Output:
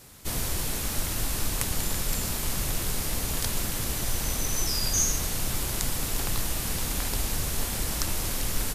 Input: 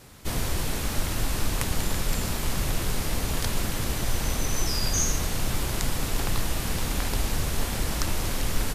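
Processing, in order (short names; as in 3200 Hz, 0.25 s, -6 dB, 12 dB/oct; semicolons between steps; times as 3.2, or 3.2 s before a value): high shelf 5300 Hz +9 dB; gain -3.5 dB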